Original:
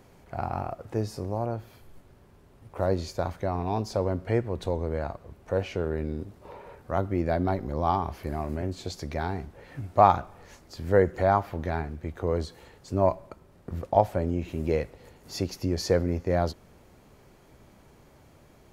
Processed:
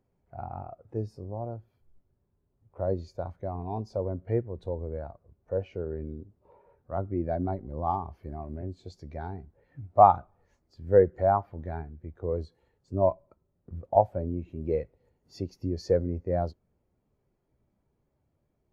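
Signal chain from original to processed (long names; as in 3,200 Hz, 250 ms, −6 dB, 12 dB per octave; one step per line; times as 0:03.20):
every bin expanded away from the loudest bin 1.5 to 1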